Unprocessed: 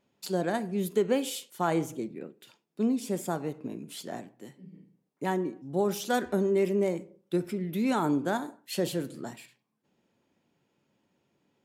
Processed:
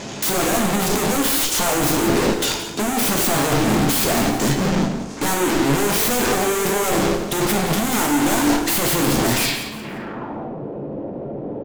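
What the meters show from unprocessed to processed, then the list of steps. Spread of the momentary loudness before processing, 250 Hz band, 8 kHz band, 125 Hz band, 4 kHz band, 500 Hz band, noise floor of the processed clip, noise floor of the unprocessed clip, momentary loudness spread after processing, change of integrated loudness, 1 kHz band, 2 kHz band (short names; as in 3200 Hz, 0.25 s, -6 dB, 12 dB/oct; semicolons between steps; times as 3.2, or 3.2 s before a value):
15 LU, +11.0 dB, +22.0 dB, +13.0 dB, +19.0 dB, +8.5 dB, -31 dBFS, -77 dBFS, 13 LU, +12.0 dB, +13.0 dB, +17.0 dB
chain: in parallel at -7 dB: fuzz box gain 51 dB, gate -57 dBFS; on the sum: power-law curve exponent 0.35; low-pass sweep 6600 Hz -> 550 Hz, 9.36–10.56; wavefolder -16 dBFS; on a send: frequency-shifting echo 0.173 s, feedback 32%, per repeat +43 Hz, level -12 dB; on the sum: plate-style reverb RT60 0.7 s, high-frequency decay 0.7×, DRR 4 dB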